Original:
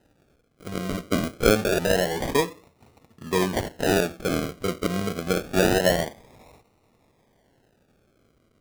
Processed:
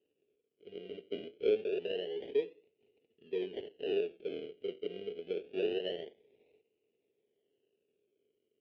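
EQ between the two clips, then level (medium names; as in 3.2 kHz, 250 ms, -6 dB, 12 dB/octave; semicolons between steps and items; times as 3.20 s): dynamic bell 1 kHz, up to +3 dB, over -34 dBFS, Q 0.93; two resonant band-passes 1.1 kHz, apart 2.8 oct; distance through air 290 m; -4.5 dB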